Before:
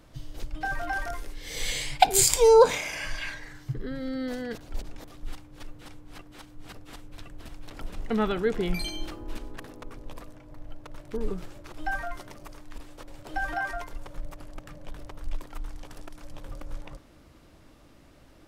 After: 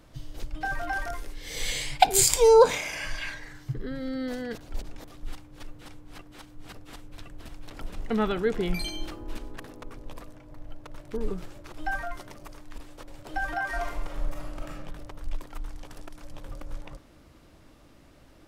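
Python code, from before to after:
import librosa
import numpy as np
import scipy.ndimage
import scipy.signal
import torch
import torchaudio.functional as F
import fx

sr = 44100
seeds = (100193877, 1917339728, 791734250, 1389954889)

y = fx.reverb_throw(x, sr, start_s=13.67, length_s=1.09, rt60_s=0.83, drr_db=-3.0)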